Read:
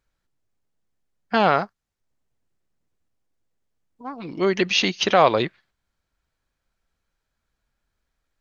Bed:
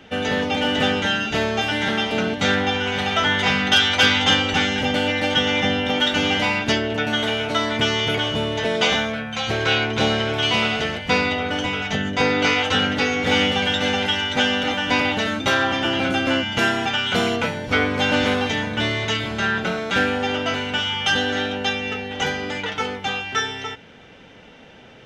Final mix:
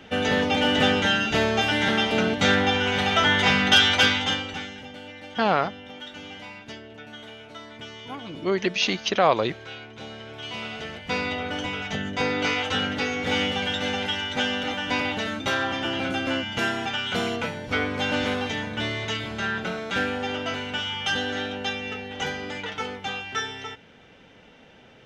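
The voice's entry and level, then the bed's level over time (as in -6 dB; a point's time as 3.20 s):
4.05 s, -3.5 dB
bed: 3.90 s -0.5 dB
4.90 s -20 dB
10.06 s -20 dB
11.34 s -6 dB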